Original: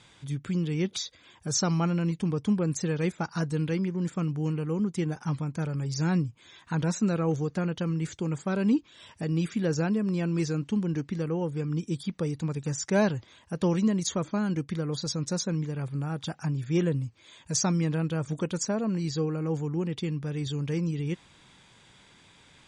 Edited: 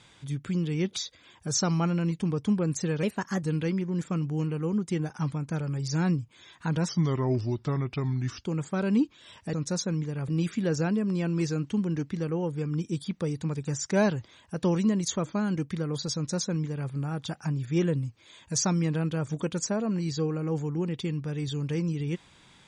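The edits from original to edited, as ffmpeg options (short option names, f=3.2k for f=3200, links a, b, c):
-filter_complex "[0:a]asplit=7[a][b][c][d][e][f][g];[a]atrim=end=3.034[h];[b]atrim=start=3.03:end=3.49,asetpts=PTS-STARTPTS,asetrate=51156,aresample=44100[i];[c]atrim=start=3.486:end=6.954[j];[d]atrim=start=6.95:end=8.18,asetpts=PTS-STARTPTS,asetrate=34839,aresample=44100,atrim=end_sample=68662,asetpts=PTS-STARTPTS[k];[e]atrim=start=8.176:end=9.272[l];[f]atrim=start=15.138:end=15.892[m];[g]atrim=start=9.268[n];[h][i]acrossfade=d=0.004:c1=hsin:c2=hsin[o];[o][j]acrossfade=d=0.004:c1=hsin:c2=hsin[p];[p][k]acrossfade=d=0.004:c1=hsin:c2=hsin[q];[q][l]acrossfade=d=0.004:c1=hsin:c2=hsin[r];[r][m]acrossfade=d=0.004:c1=hsin:c2=hsin[s];[s][n]acrossfade=d=0.004:c1=hsin:c2=hsin"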